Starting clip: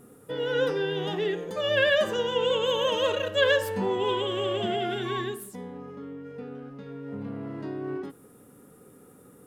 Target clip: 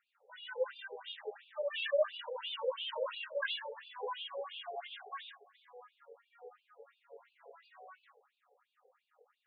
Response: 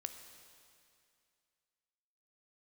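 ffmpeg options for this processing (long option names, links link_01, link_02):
-filter_complex "[0:a]flanger=delay=19.5:depth=2.4:speed=1,asplit=2[link_01][link_02];[1:a]atrim=start_sample=2205[link_03];[link_02][link_03]afir=irnorm=-1:irlink=0,volume=-1dB[link_04];[link_01][link_04]amix=inputs=2:normalize=0,afftfilt=real='re*between(b*sr/1024,590*pow(3500/590,0.5+0.5*sin(2*PI*2.9*pts/sr))/1.41,590*pow(3500/590,0.5+0.5*sin(2*PI*2.9*pts/sr))*1.41)':imag='im*between(b*sr/1024,590*pow(3500/590,0.5+0.5*sin(2*PI*2.9*pts/sr))/1.41,590*pow(3500/590,0.5+0.5*sin(2*PI*2.9*pts/sr))*1.41)':win_size=1024:overlap=0.75,volume=-8dB"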